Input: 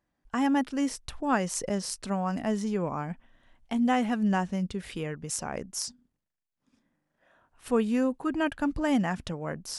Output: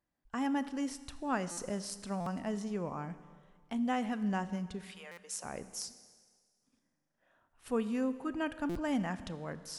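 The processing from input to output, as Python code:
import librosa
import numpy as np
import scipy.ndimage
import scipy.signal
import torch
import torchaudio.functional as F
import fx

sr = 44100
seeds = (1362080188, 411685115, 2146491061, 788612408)

y = fx.highpass(x, sr, hz=fx.line((4.84, 840.0), (5.43, 410.0)), slope=24, at=(4.84, 5.43), fade=0.02)
y = fx.rev_schroeder(y, sr, rt60_s=1.7, comb_ms=27, drr_db=13.0)
y = fx.buffer_glitch(y, sr, at_s=(1.51, 2.2, 5.11, 8.69), block=256, repeats=10)
y = F.gain(torch.from_numpy(y), -7.5).numpy()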